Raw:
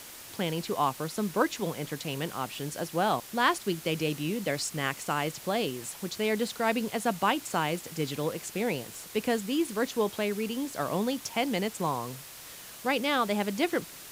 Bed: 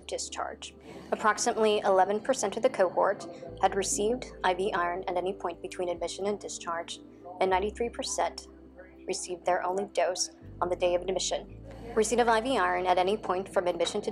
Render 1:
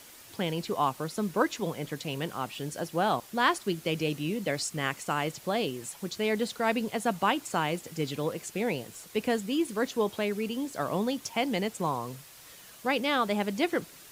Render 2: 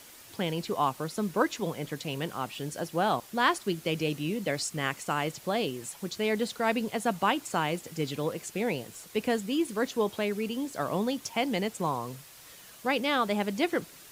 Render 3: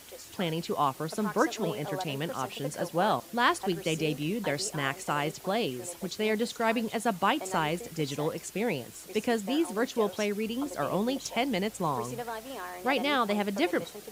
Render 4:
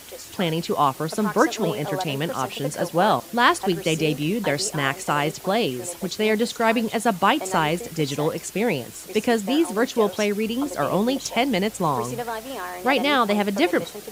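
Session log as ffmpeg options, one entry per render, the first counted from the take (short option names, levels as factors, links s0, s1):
-af "afftdn=nr=6:nf=-46"
-af anull
-filter_complex "[1:a]volume=0.224[s0];[0:a][s0]amix=inputs=2:normalize=0"
-af "volume=2.37"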